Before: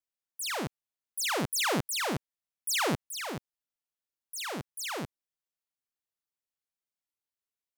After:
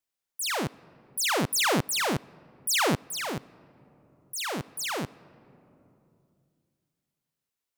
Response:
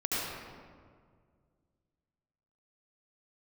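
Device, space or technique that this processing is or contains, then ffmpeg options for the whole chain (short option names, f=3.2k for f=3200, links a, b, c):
ducked reverb: -filter_complex "[0:a]asplit=3[a][b][c];[1:a]atrim=start_sample=2205[d];[b][d]afir=irnorm=-1:irlink=0[e];[c]apad=whole_len=342689[f];[e][f]sidechaincompress=threshold=-48dB:ratio=8:attack=16:release=1050,volume=-14.5dB[g];[a][g]amix=inputs=2:normalize=0,volume=4dB"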